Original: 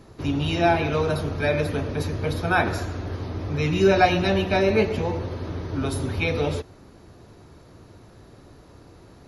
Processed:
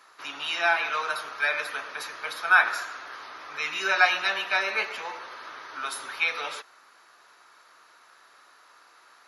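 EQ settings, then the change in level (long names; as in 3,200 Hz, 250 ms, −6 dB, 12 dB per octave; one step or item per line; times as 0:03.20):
high-pass with resonance 1,300 Hz, resonance Q 2.1
0.0 dB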